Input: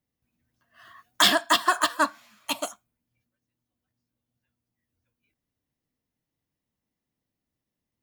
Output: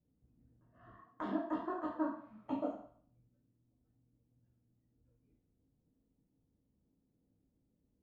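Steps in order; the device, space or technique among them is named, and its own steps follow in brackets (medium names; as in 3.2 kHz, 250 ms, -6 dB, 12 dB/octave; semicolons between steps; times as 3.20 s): 0.91–1.47 s: high-pass 210 Hz 12 dB/octave; television next door (compression 5:1, threshold -32 dBFS, peak gain reduction 15.5 dB; low-pass 420 Hz 12 dB/octave; reverberation RT60 0.55 s, pre-delay 10 ms, DRR -4 dB); trim +4 dB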